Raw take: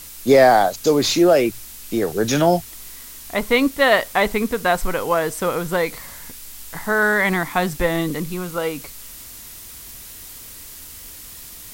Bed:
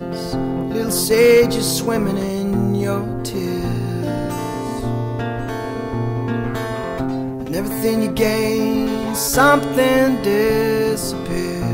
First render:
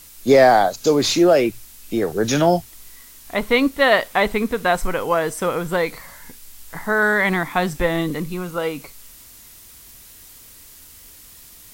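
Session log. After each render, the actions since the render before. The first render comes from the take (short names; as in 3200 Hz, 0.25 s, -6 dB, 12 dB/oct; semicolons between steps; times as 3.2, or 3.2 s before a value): noise print and reduce 6 dB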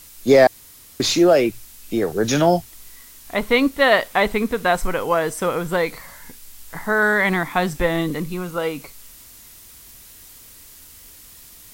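0.47–1 room tone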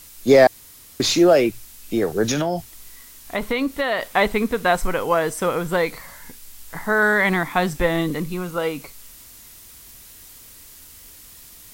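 2.31–4.16 compressor 5:1, threshold -18 dBFS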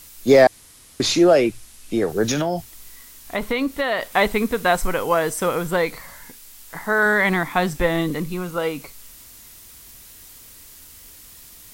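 0.42–2.09 Chebyshev low-pass 11000 Hz, order 3; 4.12–5.71 high shelf 5400 Hz +4 dB; 6.23–7.06 low shelf 140 Hz -8 dB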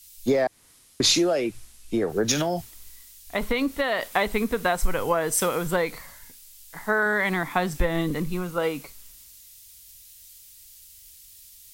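compressor 12:1, threshold -20 dBFS, peak gain reduction 12.5 dB; three-band expander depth 70%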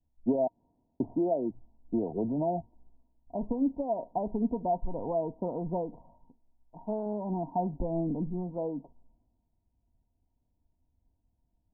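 soft clip -14 dBFS, distortion -18 dB; rippled Chebyshev low-pass 970 Hz, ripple 9 dB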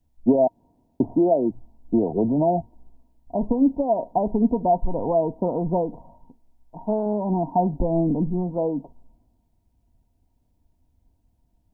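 gain +9.5 dB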